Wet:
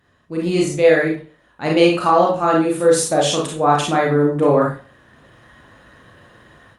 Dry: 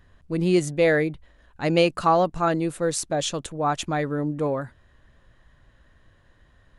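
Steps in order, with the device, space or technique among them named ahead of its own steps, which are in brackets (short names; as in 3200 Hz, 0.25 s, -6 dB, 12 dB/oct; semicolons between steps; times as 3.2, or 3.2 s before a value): far-field microphone of a smart speaker (reverb RT60 0.40 s, pre-delay 30 ms, DRR -3 dB; HPF 140 Hz 12 dB/oct; AGC gain up to 13.5 dB; gain -1 dB; Opus 48 kbps 48000 Hz)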